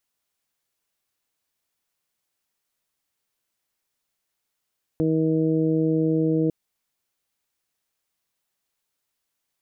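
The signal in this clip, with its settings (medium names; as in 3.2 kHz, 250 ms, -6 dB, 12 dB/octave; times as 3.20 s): steady additive tone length 1.50 s, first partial 159 Hz, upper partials 3/-1/-14.5 dB, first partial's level -24 dB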